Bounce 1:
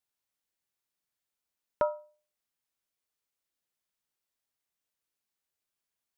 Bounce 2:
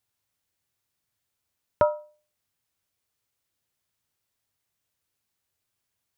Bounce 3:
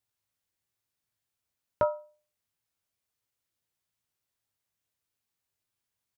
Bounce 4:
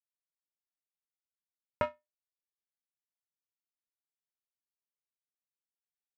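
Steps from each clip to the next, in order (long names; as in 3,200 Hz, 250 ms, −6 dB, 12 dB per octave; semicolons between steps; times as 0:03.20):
parametric band 99 Hz +12.5 dB 0.99 octaves; level +6.5 dB
double-tracking delay 18 ms −11 dB; level −5.5 dB
power curve on the samples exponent 2; one half of a high-frequency compander encoder only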